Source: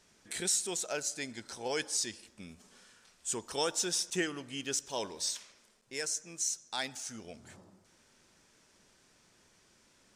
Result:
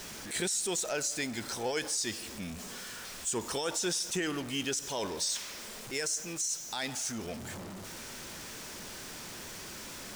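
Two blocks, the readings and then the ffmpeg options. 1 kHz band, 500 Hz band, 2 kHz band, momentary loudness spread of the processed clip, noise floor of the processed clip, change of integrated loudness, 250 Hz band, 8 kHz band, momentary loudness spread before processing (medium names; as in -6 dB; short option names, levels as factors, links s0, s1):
+2.0 dB, +2.5 dB, +3.0 dB, 11 LU, -44 dBFS, 0.0 dB, +4.5 dB, +1.5 dB, 14 LU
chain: -af "aeval=exprs='val(0)+0.5*0.00708*sgn(val(0))':c=same,alimiter=level_in=1.41:limit=0.0631:level=0:latency=1:release=48,volume=0.708,volume=1.58"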